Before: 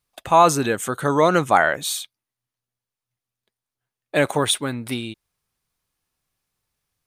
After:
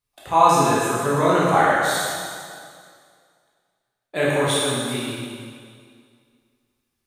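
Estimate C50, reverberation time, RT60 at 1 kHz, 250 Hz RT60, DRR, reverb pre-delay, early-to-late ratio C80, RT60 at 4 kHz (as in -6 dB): -3.0 dB, 2.1 s, 2.1 s, 2.1 s, -8.0 dB, 6 ms, -0.5 dB, 2.0 s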